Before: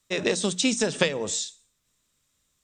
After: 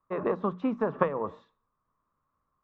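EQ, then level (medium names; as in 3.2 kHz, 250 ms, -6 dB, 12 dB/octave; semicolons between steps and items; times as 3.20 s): four-pole ladder low-pass 1.2 kHz, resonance 75%; hum notches 60/120 Hz; +8.0 dB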